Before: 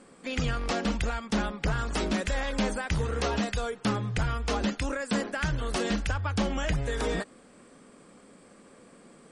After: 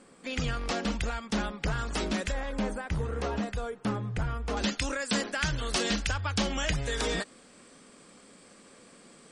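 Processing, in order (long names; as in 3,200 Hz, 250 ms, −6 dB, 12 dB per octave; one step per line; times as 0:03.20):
parametric band 5,000 Hz +2.5 dB 2.5 octaves, from 0:02.32 −7.5 dB, from 0:04.57 +9.5 dB
level −2.5 dB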